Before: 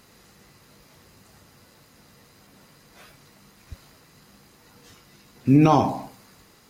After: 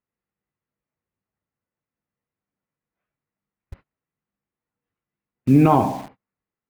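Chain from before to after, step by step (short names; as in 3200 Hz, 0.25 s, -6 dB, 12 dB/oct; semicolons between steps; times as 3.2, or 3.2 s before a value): LPF 2600 Hz 24 dB/oct; gate -43 dBFS, range -32 dB; in parallel at -3 dB: bit-crush 6-bit; on the sum: gain -3 dB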